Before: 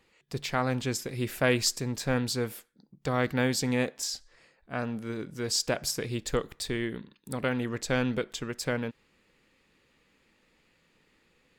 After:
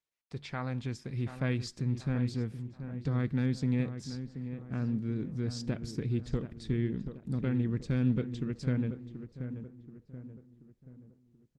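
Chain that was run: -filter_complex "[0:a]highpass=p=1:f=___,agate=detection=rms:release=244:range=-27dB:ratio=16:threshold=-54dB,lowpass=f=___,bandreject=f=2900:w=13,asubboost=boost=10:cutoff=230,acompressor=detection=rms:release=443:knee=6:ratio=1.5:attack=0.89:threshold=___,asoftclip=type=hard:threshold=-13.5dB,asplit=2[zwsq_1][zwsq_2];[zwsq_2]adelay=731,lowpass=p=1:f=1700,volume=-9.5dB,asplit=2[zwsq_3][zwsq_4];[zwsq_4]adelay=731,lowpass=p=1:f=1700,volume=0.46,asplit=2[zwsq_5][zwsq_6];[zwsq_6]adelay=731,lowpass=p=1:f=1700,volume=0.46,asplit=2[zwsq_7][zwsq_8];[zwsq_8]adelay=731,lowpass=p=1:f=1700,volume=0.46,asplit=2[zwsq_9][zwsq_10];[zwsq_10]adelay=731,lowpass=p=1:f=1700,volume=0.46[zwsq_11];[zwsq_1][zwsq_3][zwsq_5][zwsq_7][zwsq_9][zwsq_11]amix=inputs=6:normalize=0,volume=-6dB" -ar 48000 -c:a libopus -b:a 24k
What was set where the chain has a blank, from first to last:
81, 4900, -25dB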